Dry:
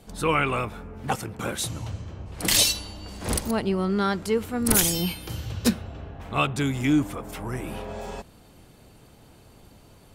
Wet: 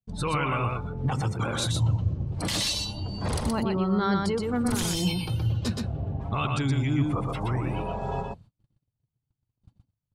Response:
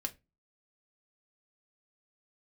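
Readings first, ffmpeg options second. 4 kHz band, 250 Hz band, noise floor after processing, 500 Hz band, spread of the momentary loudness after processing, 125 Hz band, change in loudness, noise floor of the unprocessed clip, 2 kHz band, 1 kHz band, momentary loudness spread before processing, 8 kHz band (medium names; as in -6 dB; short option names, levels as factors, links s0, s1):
-3.5 dB, -1.5 dB, -85 dBFS, -2.5 dB, 6 LU, +5.0 dB, -2.5 dB, -53 dBFS, -4.5 dB, -1.0 dB, 17 LU, -9.0 dB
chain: -filter_complex "[0:a]afftdn=nr=16:nf=-40,lowpass=9200,agate=range=0.0141:threshold=0.00282:ratio=16:detection=peak,equalizer=f=125:t=o:w=1:g=11,equalizer=f=1000:t=o:w=1:g=6,equalizer=f=4000:t=o:w=1:g=5,acompressor=threshold=0.0708:ratio=3,alimiter=limit=0.1:level=0:latency=1:release=20,aphaser=in_gain=1:out_gain=1:delay=3.6:decay=0.2:speed=0.98:type=sinusoidal,asplit=2[s0][s1];[s1]aecho=0:1:122:0.668[s2];[s0][s2]amix=inputs=2:normalize=0"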